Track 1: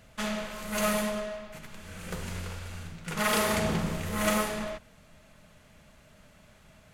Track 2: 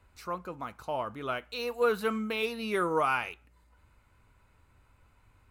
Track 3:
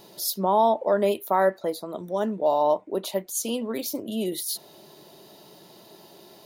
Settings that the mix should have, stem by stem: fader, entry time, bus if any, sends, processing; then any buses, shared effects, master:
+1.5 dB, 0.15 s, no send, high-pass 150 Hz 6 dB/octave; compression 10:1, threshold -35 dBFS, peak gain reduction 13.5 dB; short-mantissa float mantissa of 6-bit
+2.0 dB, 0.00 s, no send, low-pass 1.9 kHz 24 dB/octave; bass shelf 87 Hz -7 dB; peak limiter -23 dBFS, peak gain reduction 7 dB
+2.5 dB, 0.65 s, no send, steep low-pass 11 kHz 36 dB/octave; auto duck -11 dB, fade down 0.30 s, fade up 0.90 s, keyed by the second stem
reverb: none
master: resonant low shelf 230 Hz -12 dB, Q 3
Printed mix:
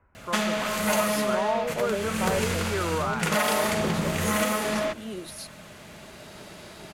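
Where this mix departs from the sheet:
stem 1 +1.5 dB -> +13.0 dB; stem 3: entry 0.65 s -> 0.90 s; master: missing resonant low shelf 230 Hz -12 dB, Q 3

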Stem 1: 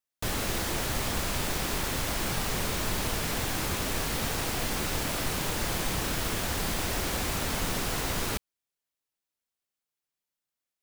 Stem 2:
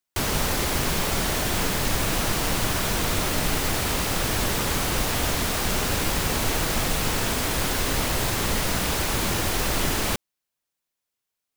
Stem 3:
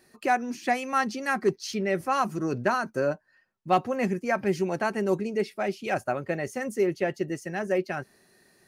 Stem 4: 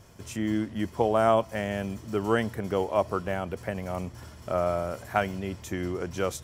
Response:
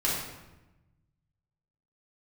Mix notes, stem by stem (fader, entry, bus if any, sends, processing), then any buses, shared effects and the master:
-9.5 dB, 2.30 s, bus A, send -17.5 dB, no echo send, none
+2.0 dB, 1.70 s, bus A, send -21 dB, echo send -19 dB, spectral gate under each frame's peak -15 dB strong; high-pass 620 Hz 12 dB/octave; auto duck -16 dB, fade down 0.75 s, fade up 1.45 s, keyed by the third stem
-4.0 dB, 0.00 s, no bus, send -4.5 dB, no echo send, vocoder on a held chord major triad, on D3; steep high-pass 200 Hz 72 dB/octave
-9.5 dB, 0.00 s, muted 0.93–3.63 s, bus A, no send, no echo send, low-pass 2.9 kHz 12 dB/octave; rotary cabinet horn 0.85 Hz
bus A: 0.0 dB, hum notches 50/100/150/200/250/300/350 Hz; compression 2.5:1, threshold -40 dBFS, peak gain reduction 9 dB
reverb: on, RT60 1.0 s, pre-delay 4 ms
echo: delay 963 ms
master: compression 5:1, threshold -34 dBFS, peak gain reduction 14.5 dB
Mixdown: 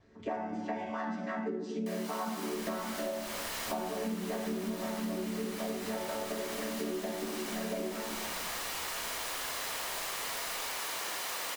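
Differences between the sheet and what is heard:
stem 1 -9.5 dB -> -20.5 dB; stem 2: missing spectral gate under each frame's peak -15 dB strong

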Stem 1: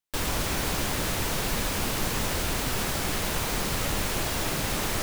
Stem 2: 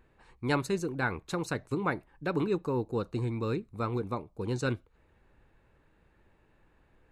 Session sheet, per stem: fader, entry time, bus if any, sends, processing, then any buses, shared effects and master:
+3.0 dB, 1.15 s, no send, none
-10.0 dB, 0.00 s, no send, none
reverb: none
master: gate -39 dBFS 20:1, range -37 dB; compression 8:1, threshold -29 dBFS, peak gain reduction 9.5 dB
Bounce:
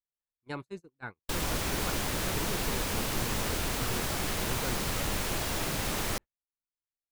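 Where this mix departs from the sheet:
stem 1 +3.0 dB -> -3.5 dB; master: missing compression 8:1, threshold -29 dBFS, peak gain reduction 9.5 dB

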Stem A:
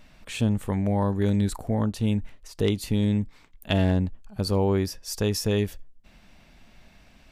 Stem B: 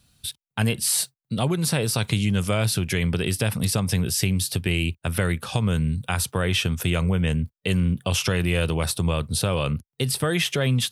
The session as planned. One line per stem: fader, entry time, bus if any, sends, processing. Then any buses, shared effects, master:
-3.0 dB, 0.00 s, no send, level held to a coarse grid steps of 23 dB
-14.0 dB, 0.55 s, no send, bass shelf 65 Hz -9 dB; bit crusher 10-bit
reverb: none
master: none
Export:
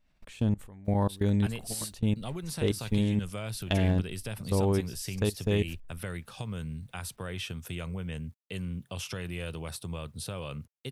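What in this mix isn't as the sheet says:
stem B: entry 0.55 s -> 0.85 s; master: extra bass shelf 95 Hz +5 dB

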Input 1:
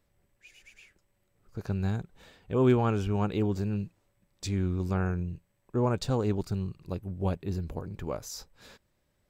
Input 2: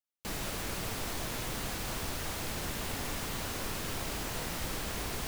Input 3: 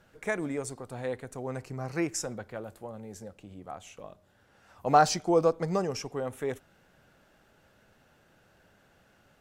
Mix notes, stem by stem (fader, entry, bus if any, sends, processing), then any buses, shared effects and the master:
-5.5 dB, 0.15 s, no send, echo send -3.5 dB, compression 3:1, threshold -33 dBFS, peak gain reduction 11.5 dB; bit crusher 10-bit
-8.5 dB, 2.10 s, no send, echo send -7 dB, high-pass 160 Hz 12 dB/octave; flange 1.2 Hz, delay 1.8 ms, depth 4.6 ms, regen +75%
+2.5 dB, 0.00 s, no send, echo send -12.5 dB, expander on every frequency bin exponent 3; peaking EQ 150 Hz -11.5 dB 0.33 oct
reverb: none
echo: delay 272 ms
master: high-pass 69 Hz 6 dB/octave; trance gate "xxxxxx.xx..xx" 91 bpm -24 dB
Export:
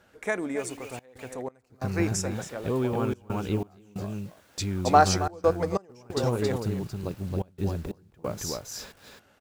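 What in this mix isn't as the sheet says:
stem 1 -5.5 dB -> +6.0 dB; stem 2 -8.5 dB -> -20.5 dB; stem 3: missing expander on every frequency bin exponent 3

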